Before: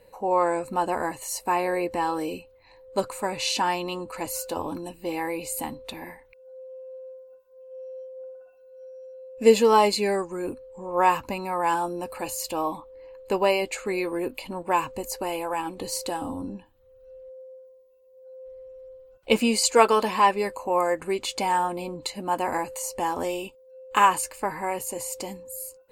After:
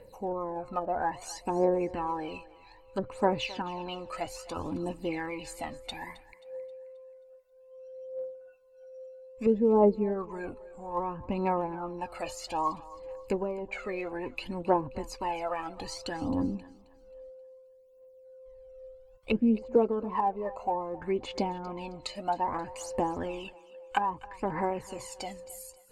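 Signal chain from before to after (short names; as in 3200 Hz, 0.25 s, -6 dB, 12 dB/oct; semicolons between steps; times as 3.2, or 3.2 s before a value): treble ducked by the level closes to 480 Hz, closed at -19.5 dBFS; phaser 0.61 Hz, delay 1.7 ms, feedback 68%; thinning echo 0.266 s, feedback 42%, high-pass 420 Hz, level -18 dB; gain -4.5 dB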